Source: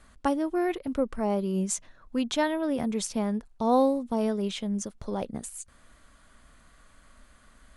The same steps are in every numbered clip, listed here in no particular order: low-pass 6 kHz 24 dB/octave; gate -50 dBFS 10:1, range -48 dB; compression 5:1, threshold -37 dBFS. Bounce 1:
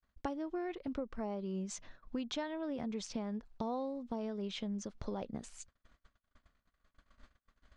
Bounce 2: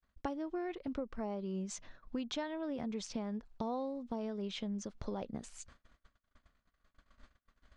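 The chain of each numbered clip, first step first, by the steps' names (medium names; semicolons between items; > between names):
low-pass > gate > compression; gate > low-pass > compression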